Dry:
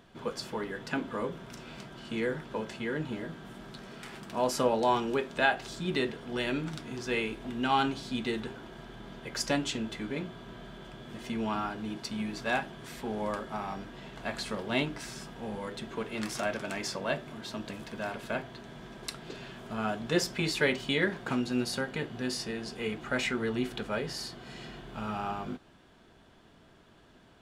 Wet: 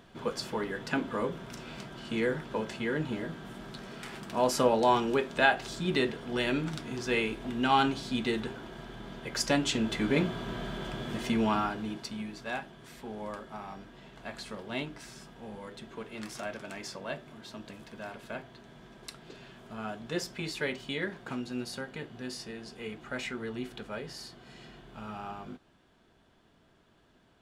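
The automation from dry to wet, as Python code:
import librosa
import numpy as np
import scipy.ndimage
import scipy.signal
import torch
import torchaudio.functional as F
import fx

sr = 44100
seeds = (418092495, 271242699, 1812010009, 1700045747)

y = fx.gain(x, sr, db=fx.line((9.54, 2.0), (10.18, 9.0), (11.02, 9.0), (11.76, 2.0), (12.38, -6.0)))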